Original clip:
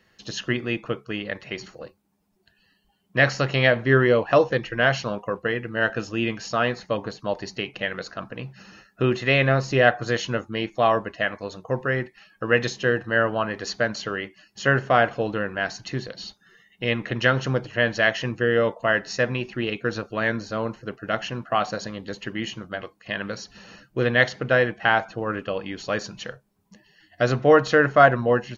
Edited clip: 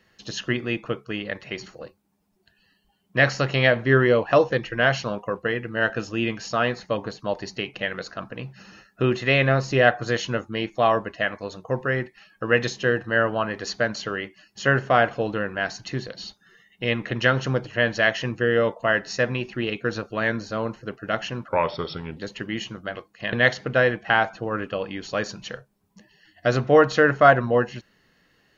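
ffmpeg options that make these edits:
-filter_complex "[0:a]asplit=4[a][b][c][d];[a]atrim=end=21.484[e];[b]atrim=start=21.48:end=22.03,asetpts=PTS-STARTPTS,asetrate=35280,aresample=44100[f];[c]atrim=start=22.026:end=23.192[g];[d]atrim=start=24.078[h];[e][f]acrossfade=d=0.004:c1=hsin:c2=hsin[i];[i][g]acrossfade=d=0.004:c1=hsin:c2=hsin[j];[j][h]acrossfade=d=0.004:c1=hsin:c2=hsin"

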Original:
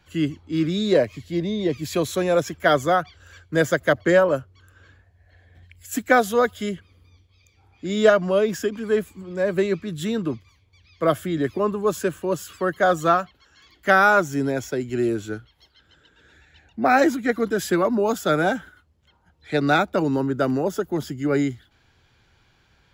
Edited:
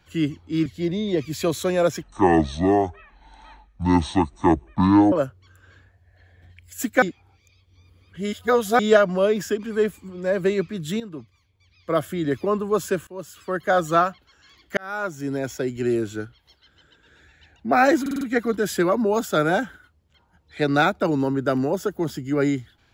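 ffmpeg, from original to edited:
-filter_complex "[0:a]asplit=13[a][b][c][d][e][f][g][h][i][j][k][l][m];[a]atrim=end=0.662[n];[b]atrim=start=1.178:end=2.554[o];[c]atrim=start=2.55:end=4.25,asetpts=PTS-STARTPTS,asetrate=24255,aresample=44100,atrim=end_sample=136309,asetpts=PTS-STARTPTS[p];[d]atrim=start=4.246:end=6.152[q];[e]atrim=start=6.148:end=7.922,asetpts=PTS-STARTPTS,areverse[r];[f]atrim=start=7.918:end=10.13,asetpts=PTS-STARTPTS,afade=t=out:st=2.208:d=0.004:c=hsin:silence=0.223872[s];[g]atrim=start=10.13:end=12.2,asetpts=PTS-STARTPTS,afade=t=in:d=1.34:silence=0.223872,afade=t=out:st=2.066:d=0.004:c=hsin:silence=0.141254[t];[h]atrim=start=12.2:end=13.9,asetpts=PTS-STARTPTS,afade=t=in:d=0.99:c=qsin:silence=0.141254,afade=t=out:st=1.696:d=0.004:c=hsin[u];[i]atrim=start=13.9:end=17.192,asetpts=PTS-STARTPTS,afade=t=in:d=0.82[v];[j]atrim=start=17.138:end=17.192[w];[k]atrim=start=17.138:end=17.192[x];[l]atrim=start=17.138:end=17.192[y];[m]atrim=start=17.138[z];[n][o]acrossfade=d=0.004:c1=hsin:c2=hsin[aa];[aa][p]acrossfade=d=0.004:c1=hsin:c2=hsin[ab];[ab][q]acrossfade=d=0.004:c1=hsin:c2=hsin[ac];[ac][r]acrossfade=d=0.004:c1=hsin:c2=hsin[ad];[s][t][u][v]concat=n=4:v=0:a=1[ae];[ad][ae]acrossfade=d=0.004:c1=hsin:c2=hsin[af];[af][w]acrossfade=d=0.004:c1=hsin:c2=hsin[ag];[ag][x]acrossfade=d=0.004:c1=hsin:c2=hsin[ah];[ah][y]acrossfade=d=0.004:c1=hsin:c2=hsin[ai];[ai][z]acrossfade=d=0.004:c1=hsin:c2=hsin"

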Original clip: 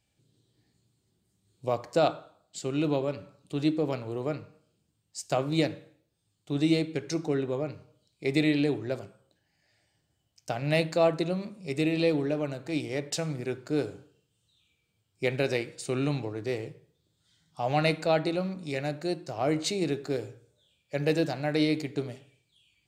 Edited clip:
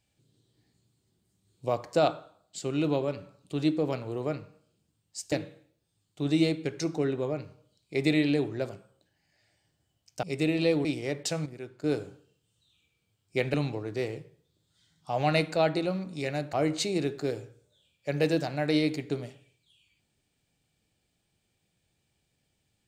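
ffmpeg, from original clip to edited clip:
-filter_complex "[0:a]asplit=8[a][b][c][d][e][f][g][h];[a]atrim=end=5.322[i];[b]atrim=start=5.618:end=10.532[j];[c]atrim=start=11.608:end=12.232[k];[d]atrim=start=12.718:end=13.332[l];[e]atrim=start=13.328:end=13.712,asetpts=PTS-STARTPTS,volume=-8.5dB[m];[f]atrim=start=13.708:end=15.412[n];[g]atrim=start=16.038:end=19.032[o];[h]atrim=start=19.388[p];[i][j]acrossfade=d=0.004:c1=hsin:c2=hsin[q];[q][k]acrossfade=d=0.004:c1=hsin:c2=hsin[r];[r][l]acrossfade=d=0.004:c1=hsin:c2=hsin[s];[s][m]acrossfade=d=0.004:c1=hsin:c2=hsin[t];[t][n]acrossfade=d=0.004:c1=hsin:c2=hsin[u];[u][o]acrossfade=d=0.004:c1=hsin:c2=hsin[v];[v][p]acrossfade=d=0.004:c1=hsin:c2=hsin"

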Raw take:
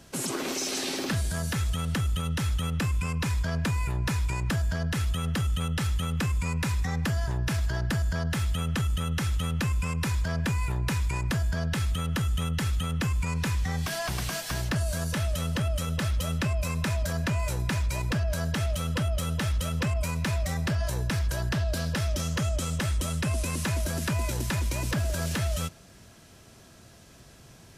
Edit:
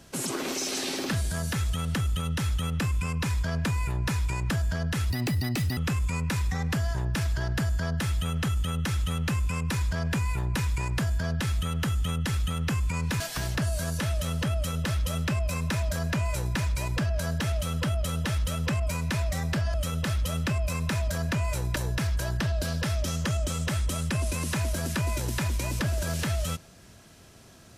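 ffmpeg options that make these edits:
-filter_complex "[0:a]asplit=6[a][b][c][d][e][f];[a]atrim=end=5.104[g];[b]atrim=start=5.1:end=6.1,asetpts=PTS-STARTPTS,asetrate=65709,aresample=44100,atrim=end_sample=29597,asetpts=PTS-STARTPTS[h];[c]atrim=start=6.096:end=13.532[i];[d]atrim=start=14.338:end=20.882[j];[e]atrim=start=15.688:end=17.712[k];[f]atrim=start=20.878[l];[g][h]acrossfade=d=0.004:c1=hsin:c2=hsin[m];[m][i]acrossfade=d=0.004:c1=hsin:c2=hsin[n];[n][j]acrossfade=d=0.004:c1=hsin:c2=hsin[o];[o][k]acrossfade=d=0.004:c1=hsin:c2=hsin[p];[p][l]acrossfade=d=0.004:c1=hsin:c2=hsin"

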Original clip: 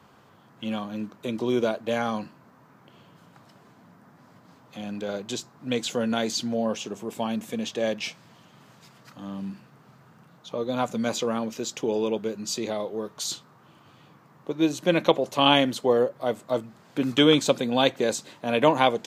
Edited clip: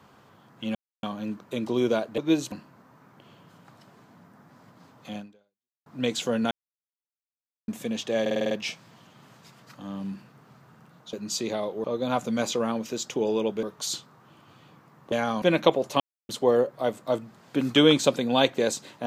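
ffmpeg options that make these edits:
-filter_complex "[0:a]asplit=20[a][b][c][d][e][f][g][h][i][j][k][l][m][n][o][p][q][r][s][t];[a]atrim=end=0.75,asetpts=PTS-STARTPTS,afade=t=out:st=0.746:d=0.004:c=hsin,apad=pad_dur=0.28[u];[b]atrim=start=0.75:end=1.902,asetpts=PTS-STARTPTS,afade=t=in:d=0.004:c=hsin[v];[c]atrim=start=14.498:end=14.842[w];[d]atrim=start=2.198:end=5.54,asetpts=PTS-STARTPTS,afade=t=out:st=2.652:d=0.69:c=exp[x];[e]atrim=start=5.54:end=6.19,asetpts=PTS-STARTPTS,afade=t=in:d=0.004:c=hsin,afade=t=out:st=0.646:d=0.004:c=hsin[y];[f]atrim=start=6.19:end=7.36,asetpts=PTS-STARTPTS,volume=0[z];[g]atrim=start=7.36:end=7.942,asetpts=PTS-STARTPTS,afade=t=in:d=0.004:c=hsin[aa];[h]atrim=start=7.888:end=7.942[ab];[i]atrim=start=7.888:end=7.942[ac];[j]atrim=start=7.888:end=7.942[ad];[k]atrim=start=7.888:end=7.942[ae];[l]atrim=start=7.888:end=7.942[af];[m]atrim=start=7.888:end=10.512[ag];[n]atrim=start=12.298:end=13.012[ah];[o]atrim=start=10.508:end=12.302[ai];[p]atrim=start=13.008:end=14.502[aj];[q]atrim=start=1.898:end=2.202[ak];[r]atrim=start=14.838:end=15.42,asetpts=PTS-STARTPTS,afade=t=out:st=0.578:d=0.004:c=hsin[al];[s]atrim=start=15.42:end=15.71,asetpts=PTS-STARTPTS,volume=0[am];[t]atrim=start=15.71,asetpts=PTS-STARTPTS,afade=t=in:d=0.004:c=hsin[an];[u][v]concat=n=2:v=0:a=1[ao];[ao][w]acrossfade=d=0.004:c1=hsin:c2=hsin[ap];[x][y][z][aa]concat=n=4:v=0:a=1[aq];[ap][aq]acrossfade=d=0.004:c1=hsin:c2=hsin[ar];[ar][ab]acrossfade=d=0.004:c1=hsin:c2=hsin[as];[as][ac]acrossfade=d=0.004:c1=hsin:c2=hsin[at];[at][ad]acrossfade=d=0.004:c1=hsin:c2=hsin[au];[au][ae]acrossfade=d=0.004:c1=hsin:c2=hsin[av];[av][af]acrossfade=d=0.004:c1=hsin:c2=hsin[aw];[aw][ag]acrossfade=d=0.004:c1=hsin:c2=hsin[ax];[ax][ah]acrossfade=d=0.004:c1=hsin:c2=hsin[ay];[ay][ai]acrossfade=d=0.004:c1=hsin:c2=hsin[az];[az][aj]acrossfade=d=0.004:c1=hsin:c2=hsin[ba];[ba][ak]acrossfade=d=0.004:c1=hsin:c2=hsin[bb];[al][am][an]concat=n=3:v=0:a=1[bc];[bb][bc]acrossfade=d=0.004:c1=hsin:c2=hsin"

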